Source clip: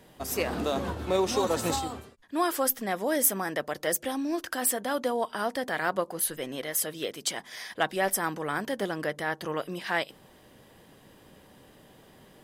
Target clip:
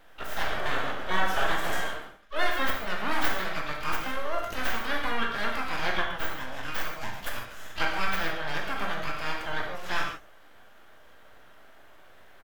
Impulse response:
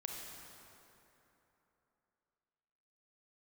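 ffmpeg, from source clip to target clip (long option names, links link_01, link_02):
-filter_complex "[0:a]aeval=exprs='abs(val(0))':channel_layout=same,equalizer=frequency=160:width_type=o:width=0.67:gain=-6,equalizer=frequency=630:width_type=o:width=0.67:gain=6,equalizer=frequency=1600:width_type=o:width=0.67:gain=11,equalizer=frequency=4000:width_type=o:width=0.67:gain=-11,equalizer=frequency=10000:width_type=o:width=0.67:gain=-6,asplit=3[link_01][link_02][link_03];[link_02]asetrate=33038,aresample=44100,atempo=1.33484,volume=-15dB[link_04];[link_03]asetrate=88200,aresample=44100,atempo=0.5,volume=-6dB[link_05];[link_01][link_04][link_05]amix=inputs=3:normalize=0[link_06];[1:a]atrim=start_sample=2205,afade=type=out:start_time=0.36:duration=0.01,atrim=end_sample=16317,asetrate=83790,aresample=44100[link_07];[link_06][link_07]afir=irnorm=-1:irlink=0,volume=5.5dB"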